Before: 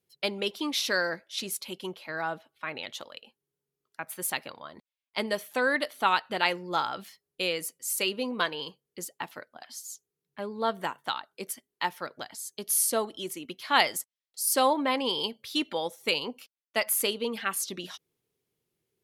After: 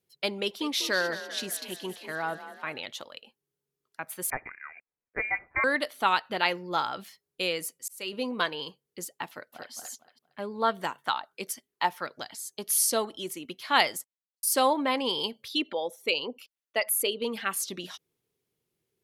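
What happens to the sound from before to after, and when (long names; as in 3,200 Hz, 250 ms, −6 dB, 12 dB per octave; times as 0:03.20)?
0:00.41–0:02.80: echo with shifted repeats 195 ms, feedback 57%, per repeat +35 Hz, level −12.5 dB
0:04.30–0:05.64: voice inversion scrambler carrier 2,600 Hz
0:06.28–0:06.78: parametric band 8,500 Hz −13 dB 0.3 octaves
0:07.47–0:08.13: volume swells 410 ms
0:09.29–0:09.72: delay throw 230 ms, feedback 25%, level −2.5 dB
0:10.54–0:13.15: auto-filter bell 1.5 Hz 700–5,800 Hz +7 dB
0:13.85–0:14.43: fade out and dull
0:15.48–0:17.22: spectral envelope exaggerated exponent 1.5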